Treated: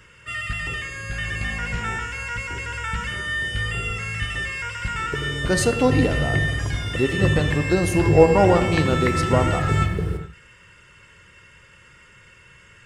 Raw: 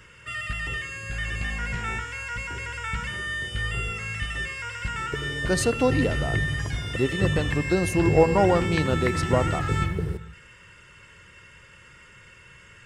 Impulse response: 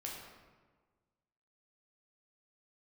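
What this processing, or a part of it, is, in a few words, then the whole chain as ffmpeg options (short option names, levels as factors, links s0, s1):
keyed gated reverb: -filter_complex "[0:a]asplit=3[s0][s1][s2];[1:a]atrim=start_sample=2205[s3];[s1][s3]afir=irnorm=-1:irlink=0[s4];[s2]apad=whole_len=566705[s5];[s4][s5]sidechaingate=range=0.0224:threshold=0.0141:ratio=16:detection=peak,volume=0.75[s6];[s0][s6]amix=inputs=2:normalize=0"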